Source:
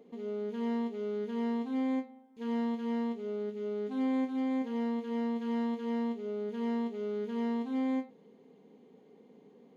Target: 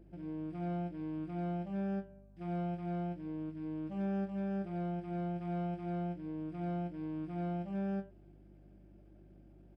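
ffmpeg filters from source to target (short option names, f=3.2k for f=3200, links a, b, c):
-af "asetrate=33038,aresample=44100,atempo=1.33484,equalizer=f=660:t=o:w=0.79:g=7,aeval=exprs='val(0)+0.00224*(sin(2*PI*50*n/s)+sin(2*PI*2*50*n/s)/2+sin(2*PI*3*50*n/s)/3+sin(2*PI*4*50*n/s)/4+sin(2*PI*5*50*n/s)/5)':c=same,volume=-5.5dB"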